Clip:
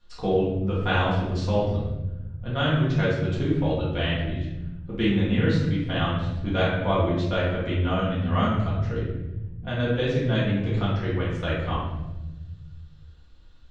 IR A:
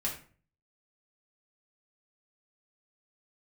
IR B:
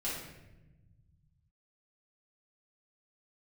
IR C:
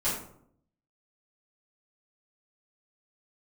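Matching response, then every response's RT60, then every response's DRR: B; 0.45, 1.0, 0.65 s; -4.5, -8.5, -12.5 dB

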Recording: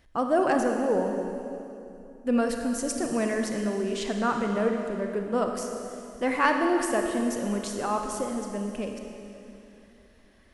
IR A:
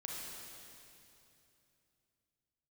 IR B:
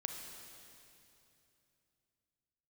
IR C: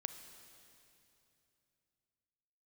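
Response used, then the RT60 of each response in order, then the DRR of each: B; 2.9, 2.9, 2.9 s; -3.5, 3.0, 8.5 dB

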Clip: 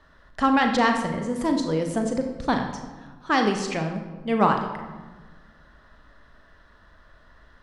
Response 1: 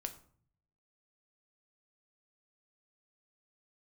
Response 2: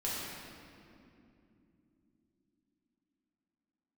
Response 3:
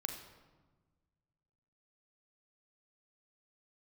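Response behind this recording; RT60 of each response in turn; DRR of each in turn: 3; 0.50 s, not exponential, 1.3 s; 6.5, -7.5, 4.0 dB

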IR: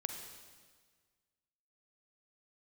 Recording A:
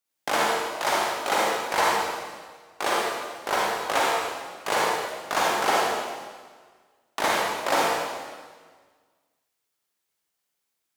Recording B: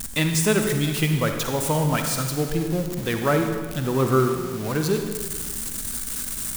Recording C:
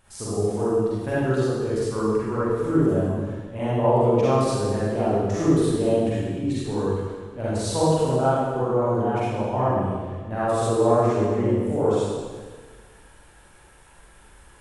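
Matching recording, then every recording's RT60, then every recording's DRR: B; 1.6, 1.6, 1.6 s; -5.0, 4.5, -10.5 dB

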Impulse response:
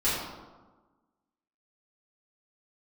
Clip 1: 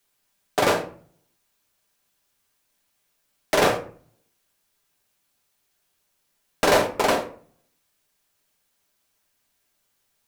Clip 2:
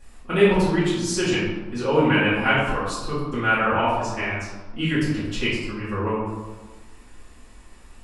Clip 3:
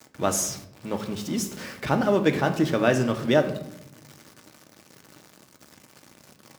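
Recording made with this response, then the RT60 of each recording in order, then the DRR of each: 2; 0.50, 1.3, 0.80 s; 2.0, -12.5, 5.0 dB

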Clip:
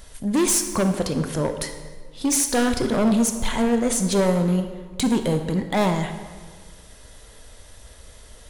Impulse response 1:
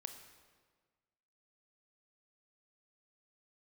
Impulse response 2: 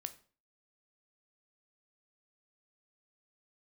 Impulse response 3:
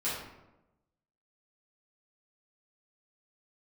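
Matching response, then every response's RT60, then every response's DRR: 1; 1.5, 0.40, 1.0 s; 7.0, 9.5, -10.5 dB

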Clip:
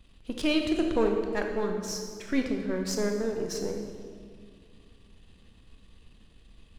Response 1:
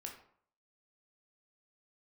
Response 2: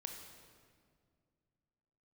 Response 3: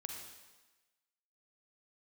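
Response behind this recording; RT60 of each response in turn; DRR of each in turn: 2; 0.60, 2.1, 1.2 s; 0.5, 3.0, 1.5 dB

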